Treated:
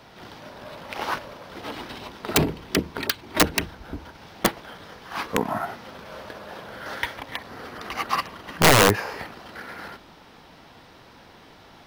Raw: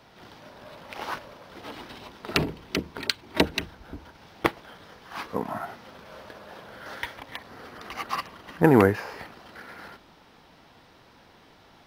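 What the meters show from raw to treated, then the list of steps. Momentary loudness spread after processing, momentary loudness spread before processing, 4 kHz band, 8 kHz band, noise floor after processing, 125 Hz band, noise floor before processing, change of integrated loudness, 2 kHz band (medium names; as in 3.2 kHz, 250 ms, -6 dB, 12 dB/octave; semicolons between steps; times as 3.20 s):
21 LU, 22 LU, +6.0 dB, +15.0 dB, -50 dBFS, +2.0 dB, -55 dBFS, +2.5 dB, +6.0 dB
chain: integer overflow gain 13.5 dB; trim +5.5 dB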